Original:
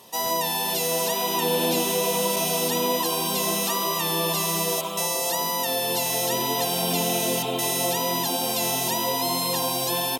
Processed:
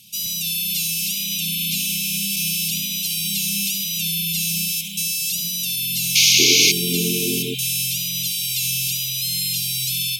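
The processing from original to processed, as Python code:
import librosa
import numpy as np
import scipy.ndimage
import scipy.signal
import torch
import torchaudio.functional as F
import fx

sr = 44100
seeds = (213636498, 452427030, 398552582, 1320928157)

y = fx.room_flutter(x, sr, wall_m=11.9, rt60_s=0.4)
y = fx.spec_paint(y, sr, seeds[0], shape='noise', start_s=6.15, length_s=0.57, low_hz=270.0, high_hz=6800.0, level_db=-17.0)
y = fx.brickwall_bandstop(y, sr, low_hz=fx.steps((0.0, 220.0), (6.38, 470.0), (7.53, 170.0)), high_hz=2100.0)
y = y * 10.0 ** (4.0 / 20.0)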